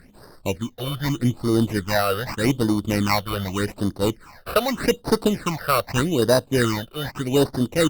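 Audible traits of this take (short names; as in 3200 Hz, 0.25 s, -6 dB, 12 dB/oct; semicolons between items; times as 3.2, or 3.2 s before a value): aliases and images of a low sample rate 3300 Hz, jitter 0%; phasing stages 8, 0.83 Hz, lowest notch 260–2500 Hz; Opus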